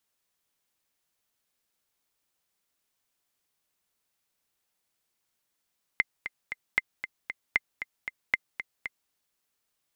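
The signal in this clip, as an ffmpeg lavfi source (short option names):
-f lavfi -i "aevalsrc='pow(10,(-9-11*gte(mod(t,3*60/231),60/231))/20)*sin(2*PI*2080*mod(t,60/231))*exp(-6.91*mod(t,60/231)/0.03)':d=3.11:s=44100"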